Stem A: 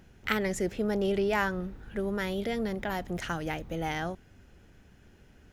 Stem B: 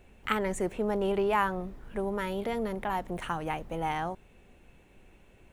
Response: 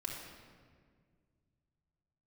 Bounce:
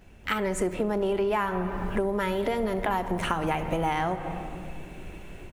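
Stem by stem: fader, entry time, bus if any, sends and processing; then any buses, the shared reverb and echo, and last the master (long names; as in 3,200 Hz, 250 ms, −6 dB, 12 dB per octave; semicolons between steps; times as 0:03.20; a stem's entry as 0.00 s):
−1.5 dB, 0.00 s, no send, no processing
−1.0 dB, 11 ms, send −5.5 dB, automatic gain control gain up to 12.5 dB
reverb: on, RT60 1.9 s, pre-delay 3 ms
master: downward compressor 6 to 1, threshold −24 dBFS, peak gain reduction 14.5 dB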